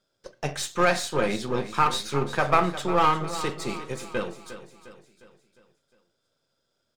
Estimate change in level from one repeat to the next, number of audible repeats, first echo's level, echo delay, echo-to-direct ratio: -6.0 dB, 4, -13.0 dB, 355 ms, -12.0 dB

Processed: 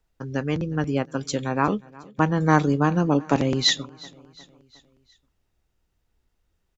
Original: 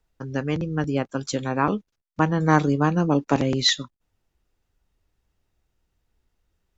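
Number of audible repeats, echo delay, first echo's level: 3, 359 ms, -23.0 dB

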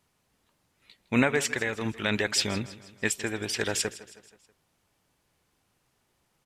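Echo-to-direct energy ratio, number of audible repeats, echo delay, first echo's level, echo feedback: -16.0 dB, 3, 160 ms, -17.0 dB, 50%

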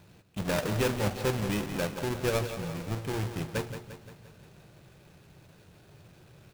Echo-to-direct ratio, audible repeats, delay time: -8.5 dB, 5, 174 ms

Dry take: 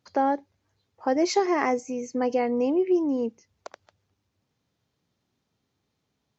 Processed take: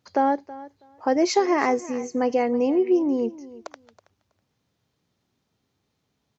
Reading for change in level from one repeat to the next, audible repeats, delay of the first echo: -16.0 dB, 2, 324 ms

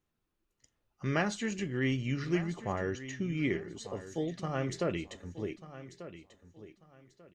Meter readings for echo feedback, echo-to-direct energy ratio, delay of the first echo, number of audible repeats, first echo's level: 26%, -13.5 dB, 1191 ms, 2, -14.0 dB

